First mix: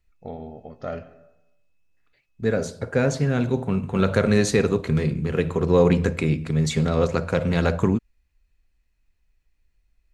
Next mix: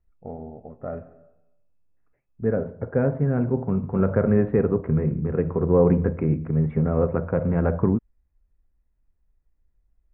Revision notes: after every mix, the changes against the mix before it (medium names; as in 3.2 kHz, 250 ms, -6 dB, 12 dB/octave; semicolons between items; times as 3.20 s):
master: add Gaussian low-pass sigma 6.1 samples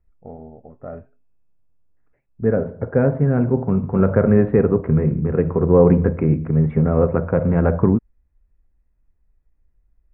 second voice +5.0 dB; reverb: off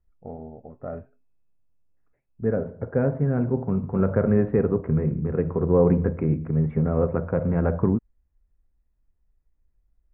second voice -5.5 dB; master: add distance through air 130 m